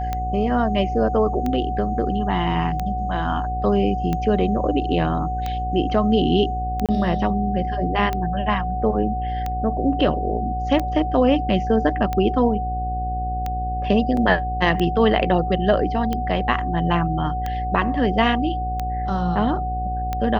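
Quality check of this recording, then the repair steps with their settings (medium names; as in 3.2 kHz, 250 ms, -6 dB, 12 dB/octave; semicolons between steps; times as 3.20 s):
buzz 60 Hz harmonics 11 -27 dBFS
tick 45 rpm -12 dBFS
whine 740 Hz -25 dBFS
6.86–6.89 s: dropout 27 ms
14.17 s: dropout 2.4 ms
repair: de-click; de-hum 60 Hz, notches 11; band-stop 740 Hz, Q 30; interpolate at 6.86 s, 27 ms; interpolate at 14.17 s, 2.4 ms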